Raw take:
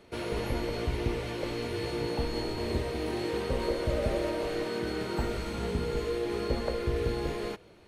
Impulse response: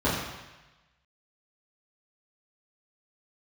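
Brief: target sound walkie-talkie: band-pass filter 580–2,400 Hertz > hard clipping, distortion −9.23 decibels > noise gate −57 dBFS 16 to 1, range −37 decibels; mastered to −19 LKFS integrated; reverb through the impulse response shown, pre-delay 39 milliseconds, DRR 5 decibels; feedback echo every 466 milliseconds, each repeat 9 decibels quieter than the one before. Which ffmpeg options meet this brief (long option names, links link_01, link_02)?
-filter_complex "[0:a]aecho=1:1:466|932|1398|1864:0.355|0.124|0.0435|0.0152,asplit=2[link_01][link_02];[1:a]atrim=start_sample=2205,adelay=39[link_03];[link_02][link_03]afir=irnorm=-1:irlink=0,volume=-20dB[link_04];[link_01][link_04]amix=inputs=2:normalize=0,highpass=580,lowpass=2400,asoftclip=type=hard:threshold=-35.5dB,agate=range=-37dB:threshold=-57dB:ratio=16,volume=20dB"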